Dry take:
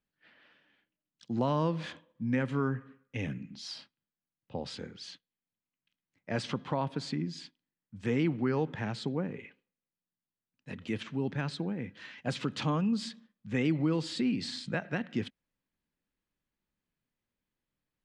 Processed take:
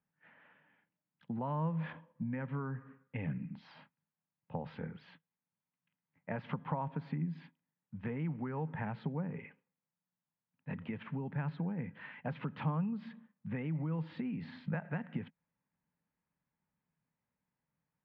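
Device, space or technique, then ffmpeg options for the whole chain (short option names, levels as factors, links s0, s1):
bass amplifier: -af "acompressor=threshold=0.0158:ratio=5,highpass=69,equalizer=f=160:t=q:w=4:g=9,equalizer=f=340:t=q:w=4:g=-8,equalizer=f=900:t=q:w=4:g=7,lowpass=f=2300:w=0.5412,lowpass=f=2300:w=1.3066"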